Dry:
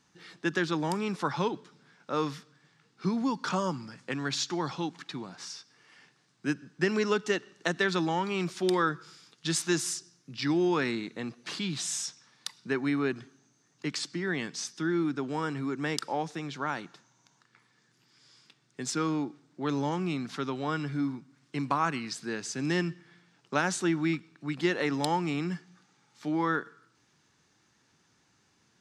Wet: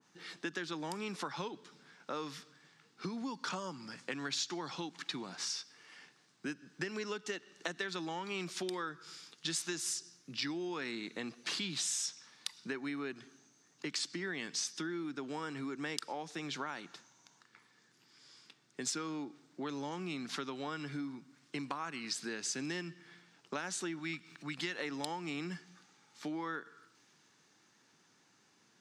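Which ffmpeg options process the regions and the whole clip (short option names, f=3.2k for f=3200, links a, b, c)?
-filter_complex "[0:a]asettb=1/sr,asplit=3[a][b][c];[a]atrim=end=23.994[d];[b]atrim=start=23.99:end=24.79,asetpts=PTS-STARTPTS,afade=t=in:d=0.004:c=qsin,afade=t=out:st=0.796:d=0.004:c=qsin,equalizer=f=390:w=0.68:g=-7,acompressor=mode=upward:threshold=-46dB:ratio=2.5:attack=3.2:release=140:knee=2.83:detection=peak[e];[c]atrim=start=24.786[f];[d][e]acrossfade=d=0.004:c1=hsin:c2=qsin[g];[g][f]acrossfade=d=0.004:c1=qsin:c2=hsin,highpass=180,acompressor=threshold=-38dB:ratio=6,adynamicequalizer=threshold=0.00224:dfrequency=1700:dqfactor=0.7:tfrequency=1700:tqfactor=0.7:attack=5:release=100:ratio=0.375:range=2.5:mode=boostabove:tftype=highshelf"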